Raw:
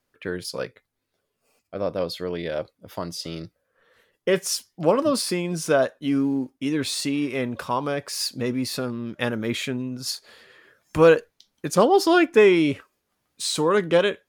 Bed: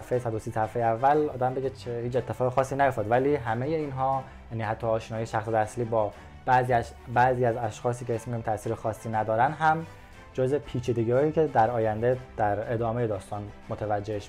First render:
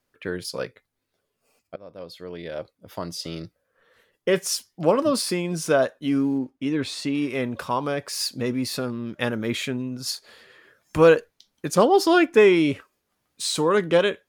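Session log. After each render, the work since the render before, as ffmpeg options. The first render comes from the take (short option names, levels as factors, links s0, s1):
-filter_complex "[0:a]asettb=1/sr,asplit=3[s0][s1][s2];[s0]atrim=end=6.384[s3];[s1]atrim=start=6.38:end=7.15,asetpts=PTS-STARTPTS,afade=t=in:d=0.004:c=qsin,afade=t=out:st=0.766:d=0.004:c=qsin,aemphasis=mode=reproduction:type=50kf[s4];[s2]atrim=start=7.146[s5];[s3][s4]acrossfade=d=0.004:c1=hsin:c2=qsin[s6];[s6][s5]acrossfade=d=0.004:c1=qsin:c2=hsin,asplit=2[s7][s8];[s7]atrim=end=1.76,asetpts=PTS-STARTPTS,afade=t=out:st=1.756:d=0.004:c=hsin:silence=0.0707946[s9];[s8]atrim=start=1.76,asetpts=PTS-STARTPTS,afade=t=in:d=1.41:silence=0.0707946[s10];[s9][s10]concat=n=2:v=0:a=1"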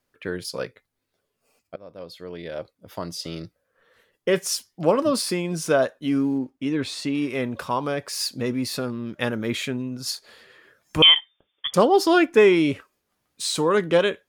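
-filter_complex "[0:a]asettb=1/sr,asplit=3[s0][s1][s2];[s0]atrim=end=11.024[s3];[s1]atrim=start=11.02:end=11.74,asetpts=PTS-STARTPTS,afade=t=in:d=0.004:c=qsin,afade=t=out:st=0.716:d=0.004:c=qsin,lowpass=f=3100:t=q:w=0.5098,lowpass=f=3100:t=q:w=0.6013,lowpass=f=3100:t=q:w=0.9,lowpass=f=3100:t=q:w=2.563,afreqshift=-3600[s4];[s2]atrim=start=11.736[s5];[s3][s4]acrossfade=d=0.004:c1=hsin:c2=qsin[s6];[s6][s5]acrossfade=d=0.004:c1=qsin:c2=hsin"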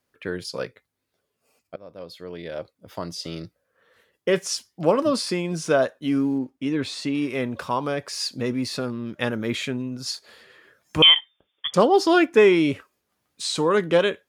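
-filter_complex "[0:a]acrossover=split=8800[s0][s1];[s1]acompressor=threshold=0.00224:ratio=4:attack=1:release=60[s2];[s0][s2]amix=inputs=2:normalize=0,highpass=46"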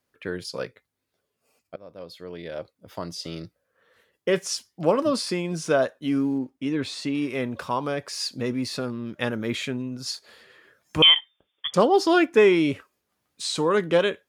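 -af "volume=0.841"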